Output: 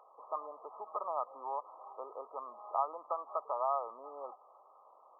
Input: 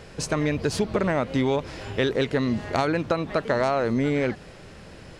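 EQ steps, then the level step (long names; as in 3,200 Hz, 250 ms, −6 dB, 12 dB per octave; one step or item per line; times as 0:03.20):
high-pass filter 830 Hz 24 dB per octave
linear-phase brick-wall low-pass 1,300 Hz
−2.5 dB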